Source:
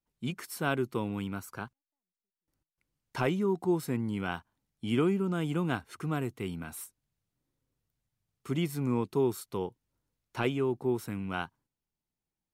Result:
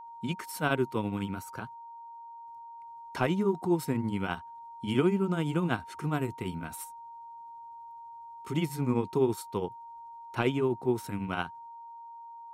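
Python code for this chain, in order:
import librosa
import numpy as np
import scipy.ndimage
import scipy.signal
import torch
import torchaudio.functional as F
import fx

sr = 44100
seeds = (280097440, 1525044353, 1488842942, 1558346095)

y = fx.granulator(x, sr, seeds[0], grain_ms=137.0, per_s=12.0, spray_ms=11.0, spread_st=0)
y = y + 10.0 ** (-47.0 / 20.0) * np.sin(2.0 * np.pi * 930.0 * np.arange(len(y)) / sr)
y = y * librosa.db_to_amplitude(3.5)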